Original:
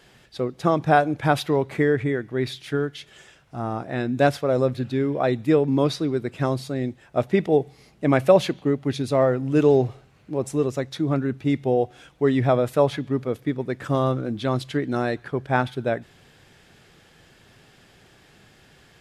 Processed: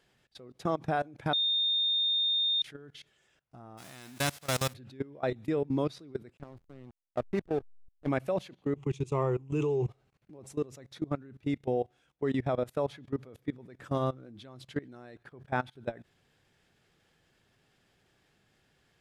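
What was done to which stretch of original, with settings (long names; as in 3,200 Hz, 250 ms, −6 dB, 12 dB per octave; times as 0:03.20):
0:01.33–0:02.62: beep over 3,650 Hz −11 dBFS
0:03.77–0:04.72: spectral envelope flattened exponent 0.3
0:06.37–0:08.09: slack as between gear wheels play −22.5 dBFS
0:08.76–0:09.88: EQ curve with evenly spaced ripples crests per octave 0.71, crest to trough 14 dB
whole clip: noise gate −44 dBFS, range −6 dB; output level in coarse steps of 21 dB; level −7 dB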